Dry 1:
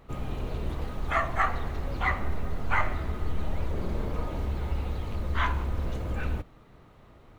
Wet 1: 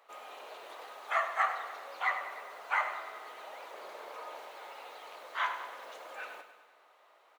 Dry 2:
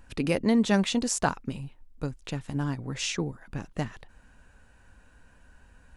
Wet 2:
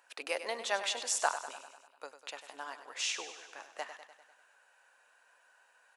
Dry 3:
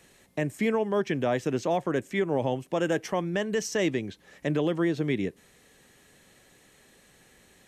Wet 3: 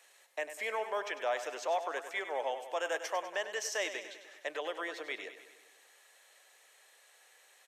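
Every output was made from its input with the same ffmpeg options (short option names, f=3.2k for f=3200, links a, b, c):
-filter_complex "[0:a]highpass=f=590:w=0.5412,highpass=f=590:w=1.3066,asplit=2[a][b];[b]aecho=0:1:99|198|297|396|495|594|693:0.282|0.169|0.101|0.0609|0.0365|0.0219|0.0131[c];[a][c]amix=inputs=2:normalize=0,volume=-3dB"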